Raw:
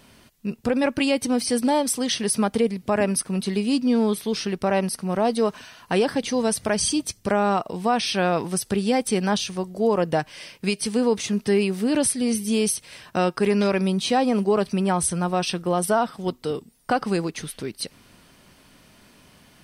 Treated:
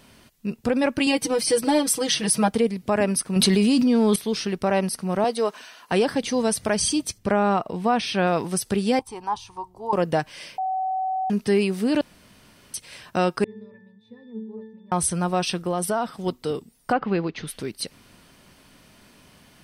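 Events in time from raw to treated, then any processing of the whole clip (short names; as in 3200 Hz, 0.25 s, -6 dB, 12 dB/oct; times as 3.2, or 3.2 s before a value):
1.06–2.51 comb 6.2 ms, depth 90%
3.36–4.16 fast leveller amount 100%
5.24–5.92 HPF 340 Hz
7.18–8.27 tone controls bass +2 dB, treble -7 dB
8.99–9.93 EQ curve 120 Hz 0 dB, 190 Hz -24 dB, 300 Hz -10 dB, 620 Hz -18 dB, 910 Hz +9 dB, 1500 Hz -15 dB
10.58–11.3 bleep 756 Hz -22.5 dBFS
12.01–12.74 room tone
13.44–14.92 octave resonator A, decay 0.69 s
15.59–16.22 compressor 2:1, threshold -22 dBFS
16.91–17.46 LPF 2600 Hz -> 4900 Hz 24 dB/oct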